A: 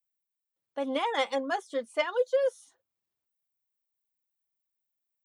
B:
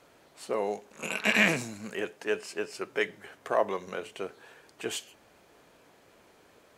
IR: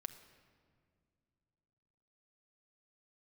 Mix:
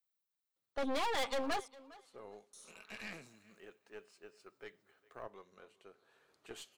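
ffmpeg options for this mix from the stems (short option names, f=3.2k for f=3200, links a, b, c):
-filter_complex "[0:a]asoftclip=type=hard:threshold=-31dB,volume=2.5dB,asplit=3[a][b][c];[a]atrim=end=1.68,asetpts=PTS-STARTPTS,afade=t=out:st=1.676:d=0.004:c=hsin[d];[b]atrim=start=1.68:end=2.53,asetpts=PTS-STARTPTS,volume=0[e];[c]atrim=start=2.53,asetpts=PTS-STARTPTS,afade=t=in:d=0.004:c=hsin[f];[d][e][f]concat=n=3:v=0:a=1,asplit=2[g][h];[h]volume=-20.5dB[i];[1:a]adelay=1650,volume=-12dB,afade=t=in:st=5.91:d=0.36:silence=0.446684,asplit=2[j][k];[k]volume=-23dB[l];[i][l]amix=inputs=2:normalize=0,aecho=0:1:406|812|1218:1|0.2|0.04[m];[g][j][m]amix=inputs=3:normalize=0,equalizer=f=400:t=o:w=0.33:g=3,equalizer=f=1.25k:t=o:w=0.33:g=6,equalizer=f=4k:t=o:w=0.33:g=6,aeval=exprs='(tanh(31.6*val(0)+0.8)-tanh(0.8))/31.6':c=same"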